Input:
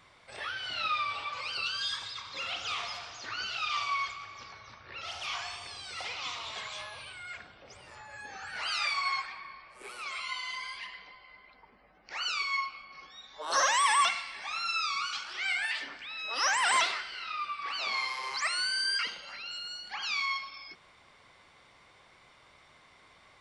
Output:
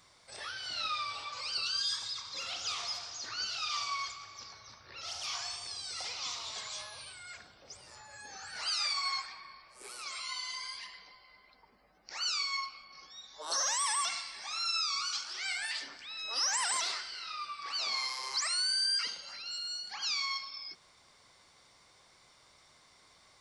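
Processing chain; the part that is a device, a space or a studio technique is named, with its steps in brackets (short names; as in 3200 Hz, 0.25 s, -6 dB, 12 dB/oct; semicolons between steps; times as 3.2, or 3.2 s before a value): over-bright horn tweeter (resonant high shelf 3800 Hz +9 dB, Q 1.5; limiter -19 dBFS, peak gain reduction 7.5 dB); gain -4.5 dB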